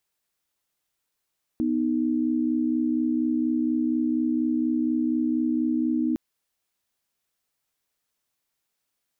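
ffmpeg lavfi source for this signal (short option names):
-f lavfi -i "aevalsrc='0.0631*(sin(2*PI*246.94*t)+sin(2*PI*311.13*t))':d=4.56:s=44100"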